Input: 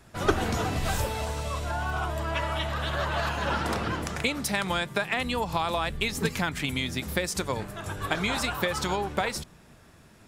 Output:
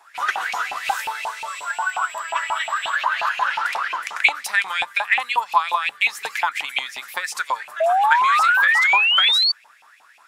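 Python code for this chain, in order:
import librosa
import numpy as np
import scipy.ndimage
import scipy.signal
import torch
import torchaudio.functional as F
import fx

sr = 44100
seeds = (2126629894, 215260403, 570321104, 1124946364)

y = fx.filter_lfo_highpass(x, sr, shape='saw_up', hz=5.6, low_hz=780.0, high_hz=2800.0, q=7.9)
y = fx.dmg_tone(y, sr, hz=7700.0, level_db=-41.0, at=(1.47, 2.95), fade=0.02)
y = fx.spec_paint(y, sr, seeds[0], shape='rise', start_s=7.8, length_s=1.72, low_hz=630.0, high_hz=4600.0, level_db=-17.0)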